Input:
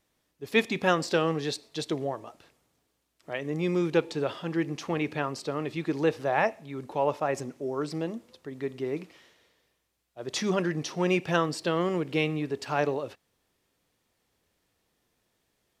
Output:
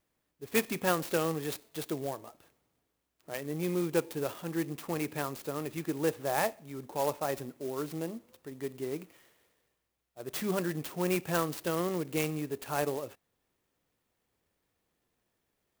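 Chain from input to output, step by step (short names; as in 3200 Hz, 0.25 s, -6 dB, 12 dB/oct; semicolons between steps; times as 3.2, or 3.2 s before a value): clock jitter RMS 0.055 ms; gain -4.5 dB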